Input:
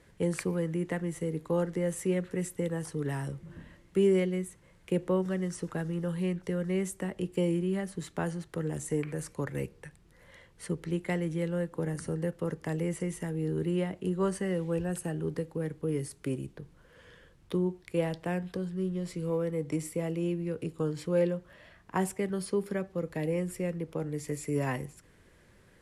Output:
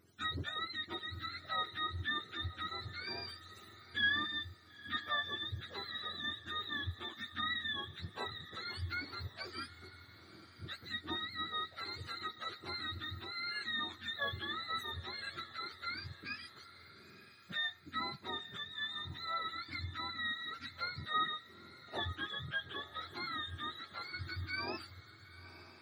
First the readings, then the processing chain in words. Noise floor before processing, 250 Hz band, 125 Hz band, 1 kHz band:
−60 dBFS, −20.0 dB, −14.5 dB, +1.5 dB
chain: frequency axis turned over on the octave scale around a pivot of 810 Hz
feedback delay with all-pass diffusion 952 ms, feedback 43%, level −15 dB
level −6.5 dB

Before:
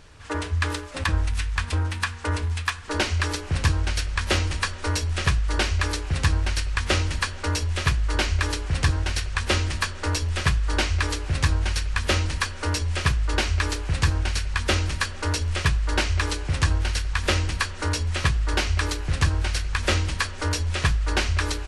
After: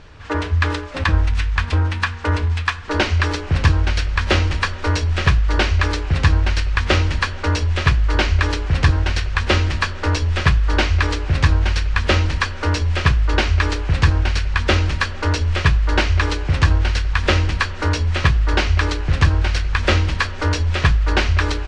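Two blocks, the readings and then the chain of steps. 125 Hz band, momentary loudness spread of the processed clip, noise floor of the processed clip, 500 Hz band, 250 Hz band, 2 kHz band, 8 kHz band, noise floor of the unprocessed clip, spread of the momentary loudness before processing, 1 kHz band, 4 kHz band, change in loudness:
+7.0 dB, 4 LU, −28 dBFS, +6.5 dB, +7.0 dB, +6.0 dB, −3.0 dB, −35 dBFS, 3 LU, +6.5 dB, +3.5 dB, +6.0 dB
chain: high-frequency loss of the air 130 metres
level +7 dB

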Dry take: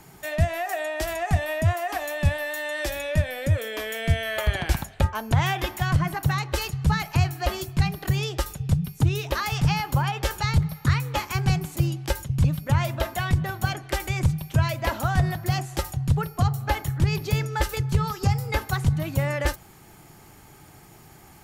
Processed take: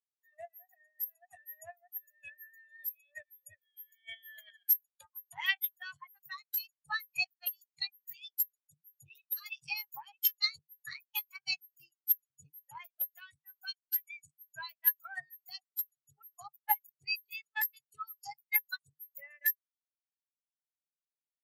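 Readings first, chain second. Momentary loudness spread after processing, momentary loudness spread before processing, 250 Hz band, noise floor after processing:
21 LU, 5 LU, below −40 dB, below −85 dBFS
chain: harmonic generator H 4 −16 dB, 7 −20 dB, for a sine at −9.5 dBFS
first difference
every bin expanded away from the loudest bin 4 to 1

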